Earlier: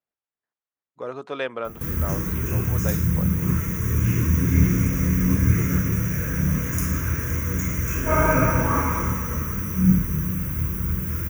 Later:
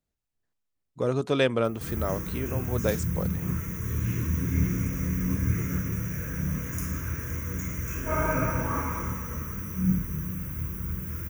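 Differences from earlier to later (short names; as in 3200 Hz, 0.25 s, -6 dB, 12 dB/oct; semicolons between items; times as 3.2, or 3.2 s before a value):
speech: remove band-pass 1200 Hz, Q 0.74; background -7.5 dB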